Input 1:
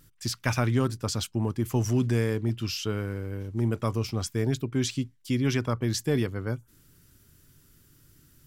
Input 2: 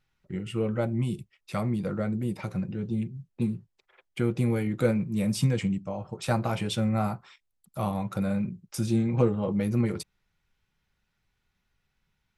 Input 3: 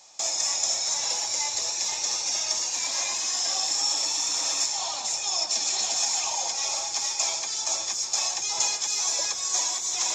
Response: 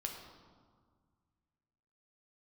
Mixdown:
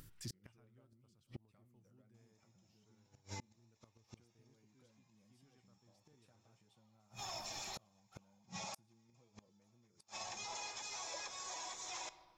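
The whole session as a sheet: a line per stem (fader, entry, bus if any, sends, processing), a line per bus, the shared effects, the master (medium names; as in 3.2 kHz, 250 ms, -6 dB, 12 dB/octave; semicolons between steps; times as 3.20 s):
-12.0 dB, 0.00 s, send -13 dB, bass shelf 200 Hz +2.5 dB; upward compressor, threshold -41 dBFS
-3.0 dB, 0.00 s, send -17 dB, compression 5:1, threshold -31 dBFS, peak gain reduction 13 dB
-11.0 dB, 1.95 s, send -9 dB, tone controls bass -1 dB, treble -14 dB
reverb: on, RT60 1.8 s, pre-delay 7 ms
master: inverted gate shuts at -28 dBFS, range -36 dB; peak limiter -36 dBFS, peak gain reduction 9 dB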